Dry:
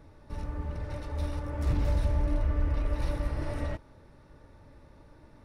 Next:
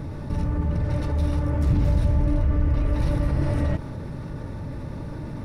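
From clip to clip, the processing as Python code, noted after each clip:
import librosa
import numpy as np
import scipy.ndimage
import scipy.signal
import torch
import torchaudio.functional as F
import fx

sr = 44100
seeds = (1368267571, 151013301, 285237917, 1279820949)

y = fx.peak_eq(x, sr, hz=150.0, db=11.5, octaves=1.9)
y = fx.env_flatten(y, sr, amount_pct=50)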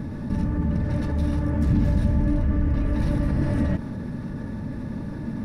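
y = fx.small_body(x, sr, hz=(220.0, 1700.0), ring_ms=55, db=13)
y = F.gain(torch.from_numpy(y), -2.0).numpy()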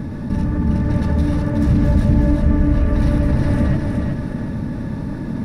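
y = fx.echo_feedback(x, sr, ms=368, feedback_pct=41, wet_db=-4.0)
y = F.gain(torch.from_numpy(y), 5.0).numpy()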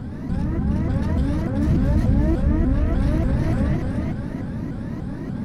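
y = fx.vibrato_shape(x, sr, shape='saw_up', rate_hz=3.4, depth_cents=250.0)
y = F.gain(torch.from_numpy(y), -4.0).numpy()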